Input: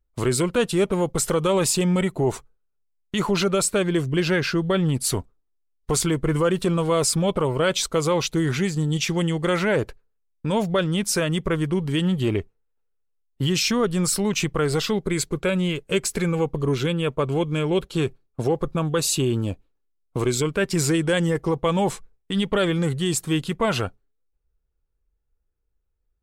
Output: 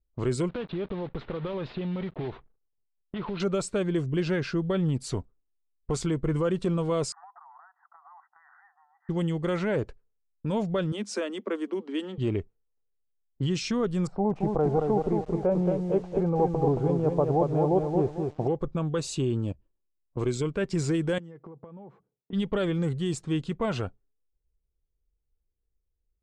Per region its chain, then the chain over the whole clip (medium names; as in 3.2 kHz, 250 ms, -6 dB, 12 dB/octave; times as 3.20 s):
0.49–3.40 s: block-companded coder 3-bit + Chebyshev low-pass 3.9 kHz, order 4 + compression 5:1, threshold -23 dBFS
7.12–9.09 s: brick-wall FIR band-pass 690–2000 Hz + compression 20:1, threshold -37 dBFS
10.92–12.18 s: steep high-pass 210 Hz 96 dB/octave + treble shelf 11 kHz +2 dB
14.07–18.47 s: resonant low-pass 770 Hz, resonance Q 6.1 + bit-crushed delay 224 ms, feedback 35%, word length 7-bit, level -4 dB
19.52–20.17 s: rippled EQ curve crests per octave 1.3, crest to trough 8 dB + compression 4:1, threshold -46 dBFS
21.18–22.33 s: high-pass 120 Hz 24 dB/octave + compression 20:1, threshold -35 dBFS + distance through air 70 m
whole clip: low-pass 8.1 kHz 24 dB/octave; level-controlled noise filter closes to 800 Hz, open at -20.5 dBFS; tilt shelf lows +4 dB, about 920 Hz; trim -8 dB